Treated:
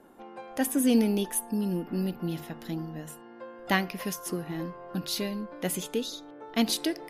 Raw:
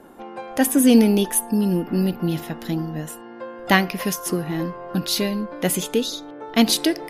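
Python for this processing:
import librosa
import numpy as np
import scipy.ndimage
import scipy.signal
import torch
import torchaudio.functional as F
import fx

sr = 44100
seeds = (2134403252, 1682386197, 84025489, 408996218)

y = fx.hum_notches(x, sr, base_hz=50, count=3)
y = F.gain(torch.from_numpy(y), -9.0).numpy()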